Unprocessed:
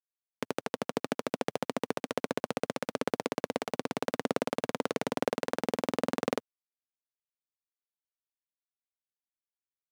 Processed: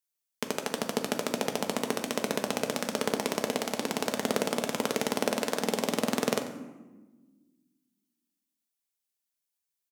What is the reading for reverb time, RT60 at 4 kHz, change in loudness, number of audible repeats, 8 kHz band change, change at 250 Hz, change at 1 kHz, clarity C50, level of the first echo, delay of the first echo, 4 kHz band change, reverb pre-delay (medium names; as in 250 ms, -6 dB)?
1.3 s, 0.65 s, +3.5 dB, 1, +10.5 dB, +3.0 dB, +2.0 dB, 9.0 dB, -15.5 dB, 91 ms, +7.5 dB, 4 ms